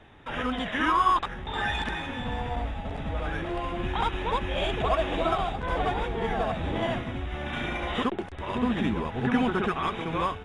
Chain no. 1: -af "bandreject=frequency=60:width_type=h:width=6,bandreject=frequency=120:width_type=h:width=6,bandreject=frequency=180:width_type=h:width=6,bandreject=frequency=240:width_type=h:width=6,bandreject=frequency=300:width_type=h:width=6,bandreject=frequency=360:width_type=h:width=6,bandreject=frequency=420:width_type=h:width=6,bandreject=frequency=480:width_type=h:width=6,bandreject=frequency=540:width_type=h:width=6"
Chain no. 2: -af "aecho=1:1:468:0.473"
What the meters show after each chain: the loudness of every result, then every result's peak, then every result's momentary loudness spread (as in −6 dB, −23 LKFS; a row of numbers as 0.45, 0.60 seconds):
−29.0, −28.0 LKFS; −12.0, −12.0 dBFS; 8, 7 LU